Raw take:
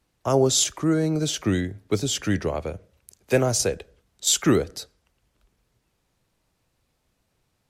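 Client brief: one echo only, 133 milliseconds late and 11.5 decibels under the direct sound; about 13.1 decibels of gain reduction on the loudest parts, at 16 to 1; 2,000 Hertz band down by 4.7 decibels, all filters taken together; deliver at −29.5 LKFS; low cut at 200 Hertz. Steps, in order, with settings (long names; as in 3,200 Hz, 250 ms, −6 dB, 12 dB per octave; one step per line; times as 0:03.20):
high-pass filter 200 Hz
parametric band 2,000 Hz −6 dB
downward compressor 16 to 1, threshold −28 dBFS
single-tap delay 133 ms −11.5 dB
level +3.5 dB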